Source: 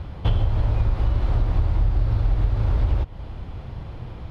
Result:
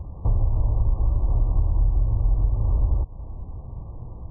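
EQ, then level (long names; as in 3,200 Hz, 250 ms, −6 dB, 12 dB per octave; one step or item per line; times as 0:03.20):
linear-phase brick-wall low-pass 1,200 Hz
low-shelf EQ 68 Hz +7.5 dB
−5.0 dB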